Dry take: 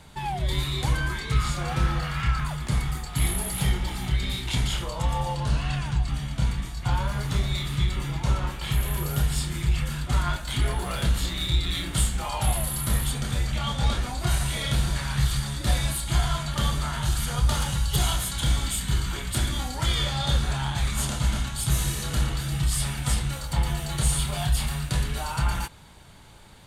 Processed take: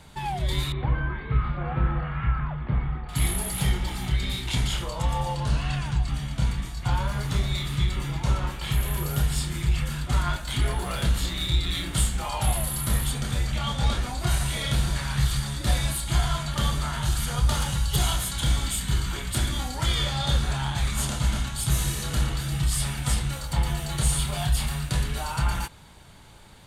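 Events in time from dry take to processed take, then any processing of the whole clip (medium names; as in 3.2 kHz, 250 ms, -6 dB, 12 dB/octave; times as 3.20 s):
0.72–3.09 s: Gaussian low-pass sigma 3.9 samples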